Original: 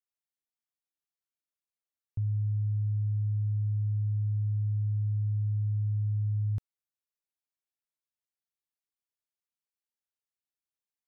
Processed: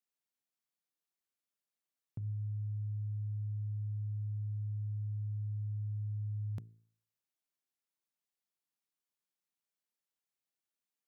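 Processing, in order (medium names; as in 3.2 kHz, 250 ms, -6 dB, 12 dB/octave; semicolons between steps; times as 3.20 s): resonant low shelf 110 Hz -14 dB, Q 1.5; de-hum 55.63 Hz, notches 8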